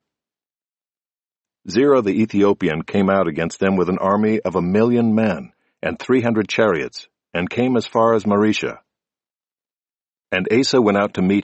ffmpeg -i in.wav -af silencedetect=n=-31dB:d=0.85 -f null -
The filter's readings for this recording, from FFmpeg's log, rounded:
silence_start: 0.00
silence_end: 1.68 | silence_duration: 1.68
silence_start: 8.75
silence_end: 10.32 | silence_duration: 1.57